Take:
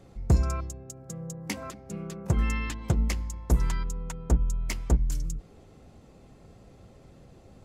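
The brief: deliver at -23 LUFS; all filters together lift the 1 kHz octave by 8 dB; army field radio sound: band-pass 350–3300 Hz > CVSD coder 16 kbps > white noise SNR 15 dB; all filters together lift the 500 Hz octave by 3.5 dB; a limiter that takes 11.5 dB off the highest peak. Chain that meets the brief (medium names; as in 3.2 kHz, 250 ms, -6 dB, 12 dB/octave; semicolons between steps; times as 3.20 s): peaking EQ 500 Hz +3.5 dB; peaking EQ 1 kHz +9 dB; peak limiter -20 dBFS; band-pass 350–3300 Hz; CVSD coder 16 kbps; white noise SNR 15 dB; trim +16 dB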